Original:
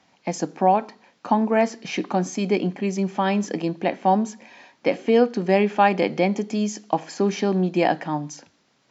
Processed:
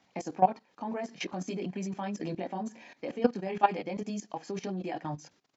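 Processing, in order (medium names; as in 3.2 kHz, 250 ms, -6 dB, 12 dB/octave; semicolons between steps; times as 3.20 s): chorus voices 2, 0.6 Hz, delay 26 ms, depth 1.4 ms; level held to a coarse grid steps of 17 dB; tempo 1.6×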